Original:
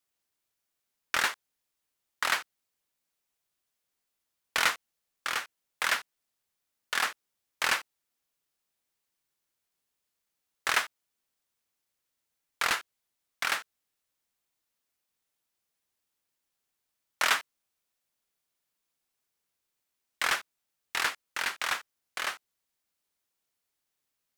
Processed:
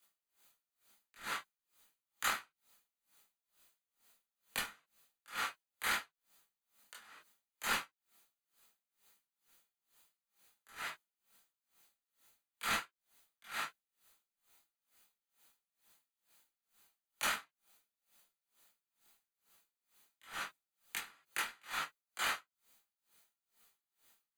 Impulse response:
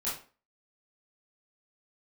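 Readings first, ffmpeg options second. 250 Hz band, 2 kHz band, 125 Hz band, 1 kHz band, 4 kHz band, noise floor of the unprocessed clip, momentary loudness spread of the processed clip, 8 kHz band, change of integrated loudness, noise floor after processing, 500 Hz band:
-4.0 dB, -10.5 dB, n/a, -8.5 dB, -10.0 dB, -84 dBFS, 19 LU, -8.0 dB, -9.0 dB, under -85 dBFS, -9.5 dB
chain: -filter_complex "[0:a]lowshelf=f=390:g=-4.5,acrossover=split=250[a][b];[b]acompressor=threshold=-38dB:ratio=3[c];[a][c]amix=inputs=2:normalize=0,acrossover=split=310|510|7800[d][e][f][g];[f]alimiter=level_in=4dB:limit=-24dB:level=0:latency=1:release=59,volume=-4dB[h];[d][e][h][g]amix=inputs=4:normalize=0,acompressor=threshold=-45dB:ratio=6,asuperstop=centerf=5400:order=4:qfactor=6.4[i];[1:a]atrim=start_sample=2205,afade=t=out:st=0.15:d=0.01,atrim=end_sample=7056[j];[i][j]afir=irnorm=-1:irlink=0,aeval=exprs='val(0)*pow(10,-29*(0.5-0.5*cos(2*PI*2.2*n/s))/20)':c=same,volume=12dB"

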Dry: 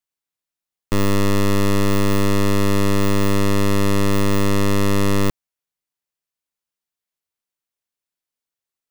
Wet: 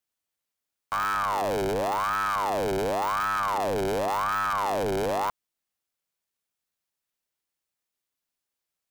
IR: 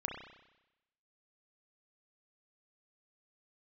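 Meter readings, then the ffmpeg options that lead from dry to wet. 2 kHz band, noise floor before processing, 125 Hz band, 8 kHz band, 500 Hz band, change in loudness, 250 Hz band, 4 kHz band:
-4.0 dB, under -85 dBFS, -20.5 dB, -11.5 dB, -5.5 dB, -7.5 dB, -17.0 dB, -10.0 dB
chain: -af "aeval=exprs='0.178*sin(PI/2*2.82*val(0)/0.178)':c=same,aeval=exprs='val(0)*sin(2*PI*840*n/s+840*0.55/0.91*sin(2*PI*0.91*n/s))':c=same,volume=-8dB"

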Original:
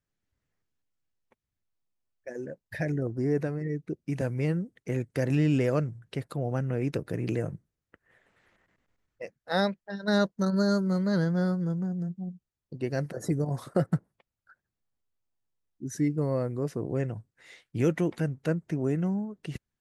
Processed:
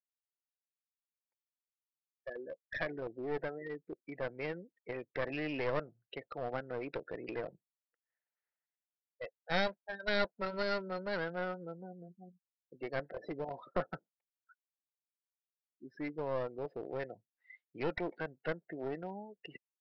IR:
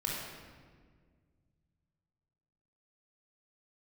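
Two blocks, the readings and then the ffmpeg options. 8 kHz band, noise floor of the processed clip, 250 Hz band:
under -20 dB, under -85 dBFS, -15.5 dB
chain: -af "bandreject=f=1.1k:w=8.1,afftdn=nr=32:nf=-40,highpass=750,highshelf=f=4.2k:g=-12,aresample=11025,aeval=exprs='clip(val(0),-1,0.00794)':c=same,aresample=44100,volume=4dB"

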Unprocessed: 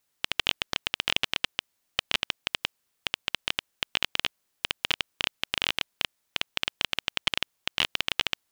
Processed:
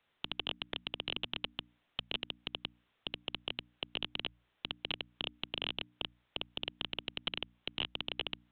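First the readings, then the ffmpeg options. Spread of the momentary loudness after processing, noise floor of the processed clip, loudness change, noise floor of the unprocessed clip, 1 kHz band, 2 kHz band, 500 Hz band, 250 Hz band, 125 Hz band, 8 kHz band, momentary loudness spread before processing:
6 LU, -79 dBFS, -10.5 dB, -76 dBFS, -11.0 dB, -13.0 dB, -5.5 dB, -2.5 dB, -4.5 dB, under -40 dB, 7 LU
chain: -filter_complex "[0:a]bandreject=f=60:t=h:w=6,bandreject=f=120:t=h:w=6,bandreject=f=180:t=h:w=6,bandreject=f=240:t=h:w=6,bandreject=f=300:t=h:w=6,acrossover=split=110|300|1700[a][b][c][d];[a]acompressor=threshold=-59dB:ratio=4[e];[b]acompressor=threshold=-59dB:ratio=4[f];[c]acompressor=threshold=-42dB:ratio=4[g];[d]acompressor=threshold=-32dB:ratio=4[h];[e][f][g][h]amix=inputs=4:normalize=0,aresample=8000,asoftclip=type=tanh:threshold=-28.5dB,aresample=44100,volume=5.5dB"

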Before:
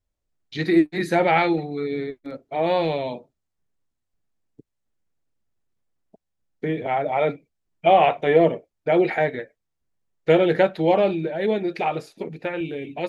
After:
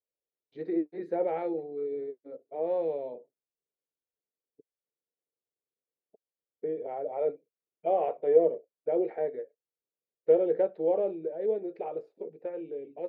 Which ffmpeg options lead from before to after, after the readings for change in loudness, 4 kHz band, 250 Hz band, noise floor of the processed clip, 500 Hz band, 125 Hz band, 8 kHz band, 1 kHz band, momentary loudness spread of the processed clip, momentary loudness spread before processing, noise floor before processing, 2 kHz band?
-8.5 dB, under -30 dB, -12.5 dB, under -85 dBFS, -6.5 dB, under -20 dB, n/a, -15.0 dB, 16 LU, 14 LU, -79 dBFS, under -25 dB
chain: -af "bandpass=f=470:t=q:w=3.9:csg=0,volume=-3dB"

